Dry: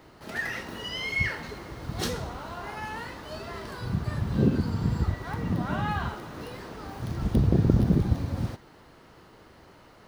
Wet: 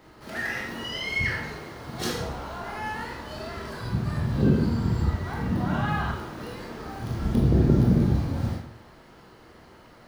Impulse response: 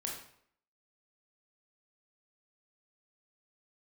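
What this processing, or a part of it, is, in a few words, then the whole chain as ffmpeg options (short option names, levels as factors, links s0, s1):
bathroom: -filter_complex "[0:a]asettb=1/sr,asplit=3[s0][s1][s2];[s0]atrim=end=1.534[s3];[s1]atrim=start=1.53:end=2.18,asetpts=PTS-STARTPTS,afade=t=in:d=0.004:c=qsin,afade=t=out:st=0.646:d=0.004:c=qsin,highpass=f=150:p=1[s4];[s2]atrim=start=2.176[s5];[s3][s4]acrossfade=d=0.004:c1=hsin:c2=qsin[s6];[s6][s5]acrossfade=d=0.004:c1=qsin:c2=hsin[s7];[1:a]atrim=start_sample=2205[s8];[s7][s8]afir=irnorm=-1:irlink=0,volume=1.19"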